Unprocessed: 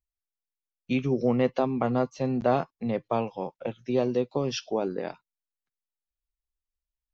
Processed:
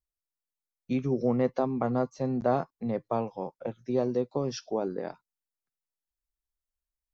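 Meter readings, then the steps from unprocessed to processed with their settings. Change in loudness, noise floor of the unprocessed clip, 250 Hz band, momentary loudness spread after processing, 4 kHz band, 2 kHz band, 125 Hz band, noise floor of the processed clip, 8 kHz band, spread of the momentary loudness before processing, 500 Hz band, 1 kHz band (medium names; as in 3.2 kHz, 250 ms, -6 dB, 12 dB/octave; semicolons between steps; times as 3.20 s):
-2.0 dB, under -85 dBFS, -2.0 dB, 9 LU, -7.5 dB, -6.5 dB, -2.0 dB, under -85 dBFS, no reading, 9 LU, -2.0 dB, -2.5 dB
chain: peaking EQ 2.9 kHz -12 dB 0.76 oct; trim -2 dB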